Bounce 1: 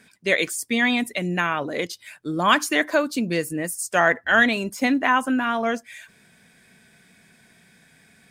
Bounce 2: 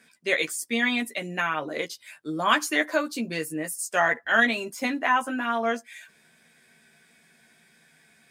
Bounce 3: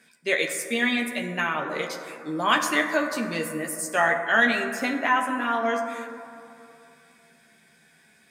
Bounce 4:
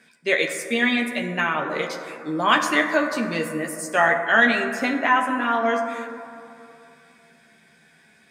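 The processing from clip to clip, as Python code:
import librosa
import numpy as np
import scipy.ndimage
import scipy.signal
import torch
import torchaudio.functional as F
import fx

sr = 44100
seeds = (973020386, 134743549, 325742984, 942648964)

y1 = fx.highpass(x, sr, hz=280.0, slope=6)
y1 = fx.doubler(y1, sr, ms=13.0, db=-4)
y1 = F.gain(torch.from_numpy(y1), -4.5).numpy()
y2 = fx.rev_plate(y1, sr, seeds[0], rt60_s=2.7, hf_ratio=0.3, predelay_ms=0, drr_db=5.0)
y3 = fx.high_shelf(y2, sr, hz=7900.0, db=-10.0)
y3 = F.gain(torch.from_numpy(y3), 3.5).numpy()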